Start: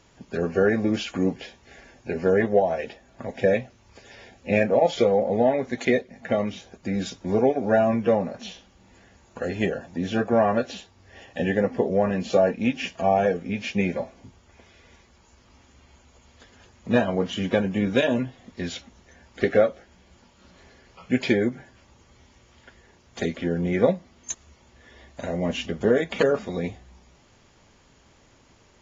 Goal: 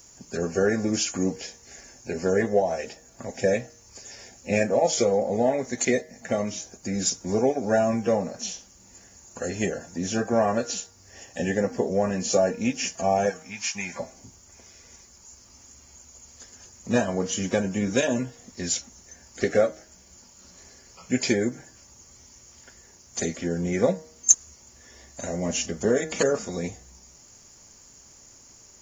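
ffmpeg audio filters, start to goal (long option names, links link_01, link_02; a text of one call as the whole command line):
ffmpeg -i in.wav -filter_complex "[0:a]asplit=3[link_01][link_02][link_03];[link_01]afade=type=out:start_time=13.29:duration=0.02[link_04];[link_02]lowshelf=frequency=690:width_type=q:width=3:gain=-11,afade=type=in:start_time=13.29:duration=0.02,afade=type=out:start_time=13.98:duration=0.02[link_05];[link_03]afade=type=in:start_time=13.98:duration=0.02[link_06];[link_04][link_05][link_06]amix=inputs=3:normalize=0,aexciter=amount=11.3:drive=4.1:freq=5200,bandreject=frequency=157.1:width_type=h:width=4,bandreject=frequency=314.2:width_type=h:width=4,bandreject=frequency=471.3:width_type=h:width=4,bandreject=frequency=628.4:width_type=h:width=4,bandreject=frequency=785.5:width_type=h:width=4,bandreject=frequency=942.6:width_type=h:width=4,bandreject=frequency=1099.7:width_type=h:width=4,bandreject=frequency=1256.8:width_type=h:width=4,bandreject=frequency=1413.9:width_type=h:width=4,bandreject=frequency=1571:width_type=h:width=4,bandreject=frequency=1728.1:width_type=h:width=4,bandreject=frequency=1885.2:width_type=h:width=4,bandreject=frequency=2042.3:width_type=h:width=4,volume=-2dB" out.wav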